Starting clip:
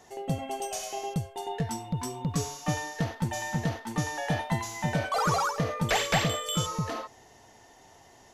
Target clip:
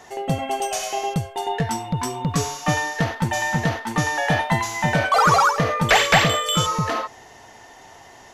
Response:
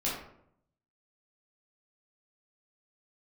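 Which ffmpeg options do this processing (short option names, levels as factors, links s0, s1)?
-af "acontrast=58,equalizer=f=1600:w=0.5:g=6.5"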